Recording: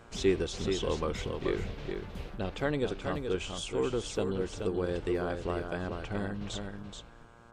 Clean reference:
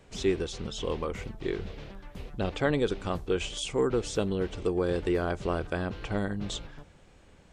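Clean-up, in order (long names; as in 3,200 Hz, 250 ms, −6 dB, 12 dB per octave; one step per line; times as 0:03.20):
hum removal 116.5 Hz, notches 14
echo removal 429 ms −6 dB
level 0 dB, from 0:02.37 +4.5 dB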